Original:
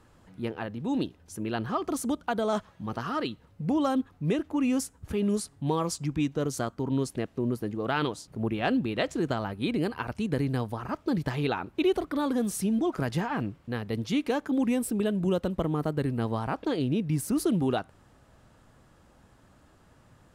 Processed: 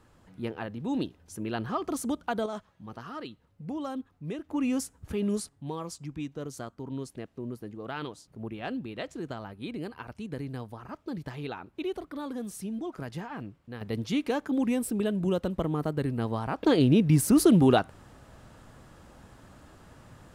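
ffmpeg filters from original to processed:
ffmpeg -i in.wav -af "asetnsamples=nb_out_samples=441:pad=0,asendcmd='2.46 volume volume -9dB;4.49 volume volume -2dB;5.49 volume volume -8.5dB;13.81 volume volume -1dB;16.63 volume volume 6.5dB',volume=-1.5dB" out.wav

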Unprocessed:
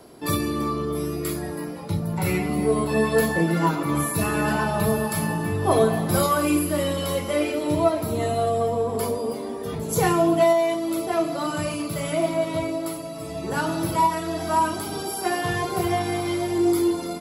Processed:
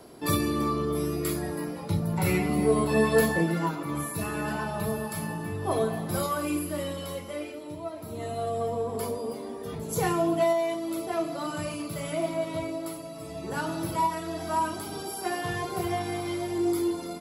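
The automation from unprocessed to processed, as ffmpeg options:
ffmpeg -i in.wav -af "volume=10dB,afade=type=out:start_time=3.22:duration=0.48:silence=0.473151,afade=type=out:start_time=6.8:duration=1.02:silence=0.334965,afade=type=in:start_time=7.82:duration=0.87:silence=0.266073" out.wav

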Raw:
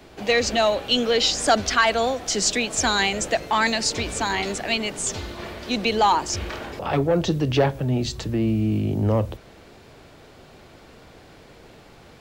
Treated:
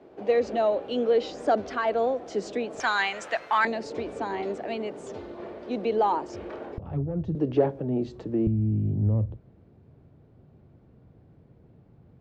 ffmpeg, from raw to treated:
ffmpeg -i in.wav -af "asetnsamples=nb_out_samples=441:pad=0,asendcmd='2.8 bandpass f 1300;3.65 bandpass f 440;6.78 bandpass f 100;7.35 bandpass f 360;8.47 bandpass f 120',bandpass=frequency=430:width_type=q:width=1.2:csg=0" out.wav

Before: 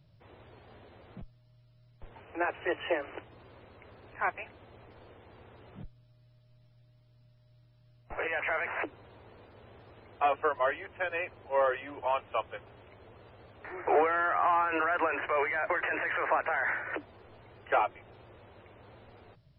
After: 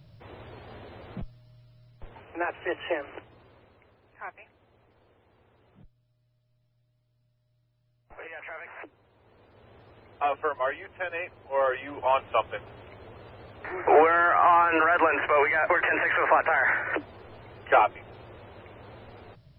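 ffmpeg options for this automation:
ffmpeg -i in.wav -af "volume=25dB,afade=type=out:start_time=1.2:duration=1.22:silence=0.398107,afade=type=out:start_time=3.09:duration=0.9:silence=0.316228,afade=type=in:start_time=9.14:duration=0.64:silence=0.334965,afade=type=in:start_time=11.51:duration=0.72:silence=0.473151" out.wav

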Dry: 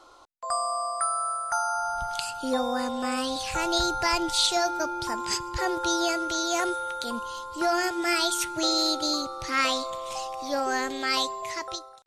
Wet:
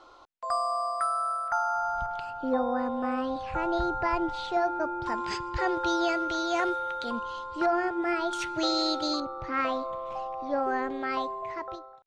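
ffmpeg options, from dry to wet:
ffmpeg -i in.wav -af "asetnsamples=nb_out_samples=441:pad=0,asendcmd='1.48 lowpass f 2600;2.06 lowpass f 1400;5.06 lowpass f 3000;7.66 lowpass f 1400;8.33 lowpass f 3600;9.2 lowpass f 1400',lowpass=4300" out.wav

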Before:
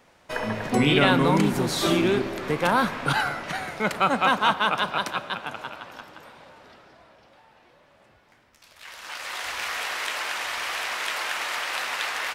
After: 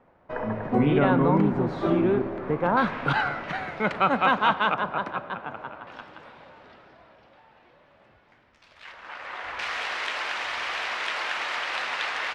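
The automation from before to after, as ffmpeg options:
ffmpeg -i in.wav -af "asetnsamples=nb_out_samples=441:pad=0,asendcmd='2.77 lowpass f 2800;4.74 lowpass f 1500;5.87 lowpass f 3400;8.92 lowpass f 1900;9.59 lowpass f 4200',lowpass=1200" out.wav

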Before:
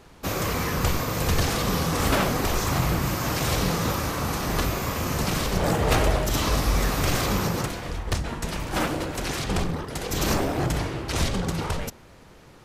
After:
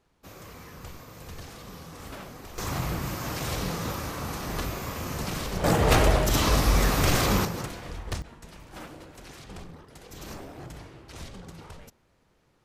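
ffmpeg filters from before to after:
ffmpeg -i in.wav -af "asetnsamples=nb_out_samples=441:pad=0,asendcmd='2.58 volume volume -6.5dB;5.64 volume volume 1dB;7.45 volume volume -6.5dB;8.22 volume volume -17dB',volume=-19dB" out.wav

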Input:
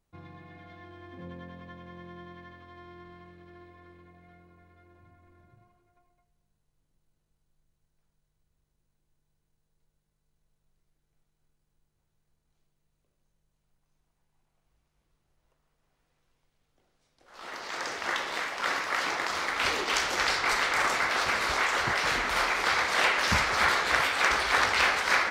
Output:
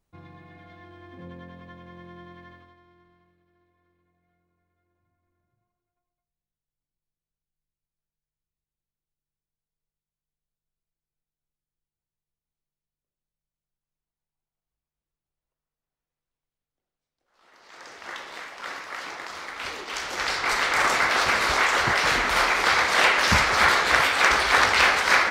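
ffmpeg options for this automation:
ffmpeg -i in.wav -af "volume=23.5dB,afade=type=out:start_time=2.54:duration=0.23:silence=0.316228,afade=type=out:start_time=2.77:duration=0.69:silence=0.398107,afade=type=in:start_time=17.52:duration=0.65:silence=0.281838,afade=type=in:start_time=19.9:duration=1.06:silence=0.266073" out.wav

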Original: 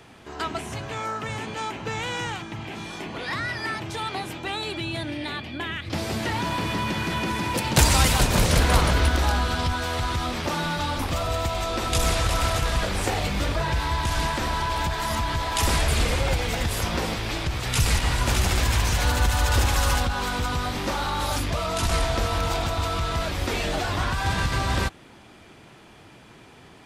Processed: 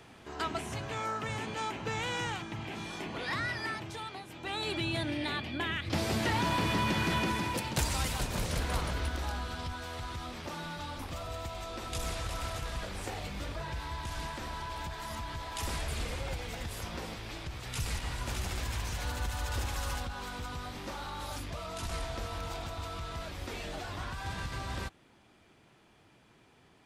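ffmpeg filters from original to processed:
ffmpeg -i in.wav -af "volume=7.5dB,afade=type=out:start_time=3.45:duration=0.82:silence=0.298538,afade=type=in:start_time=4.27:duration=0.46:silence=0.237137,afade=type=out:start_time=7.14:duration=0.67:silence=0.298538" out.wav

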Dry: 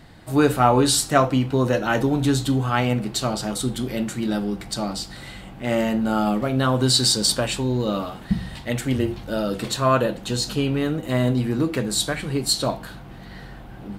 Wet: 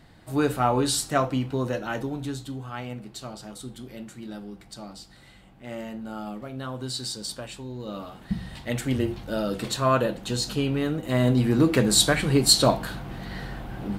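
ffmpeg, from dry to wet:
ffmpeg -i in.wav -af "volume=12dB,afade=type=out:start_time=1.43:duration=1.02:silence=0.398107,afade=type=in:start_time=7.76:duration=1.01:silence=0.281838,afade=type=in:start_time=11.05:duration=0.81:silence=0.446684" out.wav

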